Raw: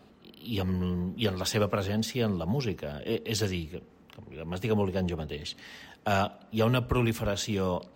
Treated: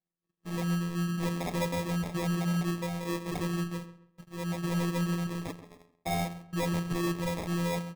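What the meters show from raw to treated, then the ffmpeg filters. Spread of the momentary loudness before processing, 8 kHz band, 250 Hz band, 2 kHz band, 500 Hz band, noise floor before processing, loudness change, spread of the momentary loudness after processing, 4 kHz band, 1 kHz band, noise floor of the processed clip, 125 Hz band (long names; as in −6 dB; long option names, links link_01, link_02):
12 LU, −3.0 dB, 0.0 dB, −2.0 dB, −6.0 dB, −57 dBFS, −2.5 dB, 9 LU, −6.0 dB, −2.0 dB, −80 dBFS, −1.0 dB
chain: -filter_complex "[0:a]bandreject=frequency=60:width_type=h:width=6,bandreject=frequency=120:width_type=h:width=6,bandreject=frequency=180:width_type=h:width=6,bandreject=frequency=240:width_type=h:width=6,bandreject=frequency=300:width_type=h:width=6,bandreject=frequency=360:width_type=h:width=6,bandreject=frequency=420:width_type=h:width=6,bandreject=frequency=480:width_type=h:width=6,agate=range=-44dB:threshold=-44dB:ratio=16:detection=peak,lowshelf=frequency=460:gain=5.5,asplit=2[link_01][link_02];[link_02]acompressor=threshold=-39dB:ratio=6,volume=1.5dB[link_03];[link_01][link_03]amix=inputs=2:normalize=0,afftfilt=real='hypot(re,im)*cos(PI*b)':imag='0':win_size=1024:overlap=0.75,acrusher=samples=30:mix=1:aa=0.000001,asoftclip=type=tanh:threshold=-24.5dB,asplit=2[link_04][link_05];[link_05]adelay=134,lowpass=frequency=2700:poles=1,volume=-14dB,asplit=2[link_06][link_07];[link_07]adelay=134,lowpass=frequency=2700:poles=1,volume=0.31,asplit=2[link_08][link_09];[link_09]adelay=134,lowpass=frequency=2700:poles=1,volume=0.31[link_10];[link_04][link_06][link_08][link_10]amix=inputs=4:normalize=0"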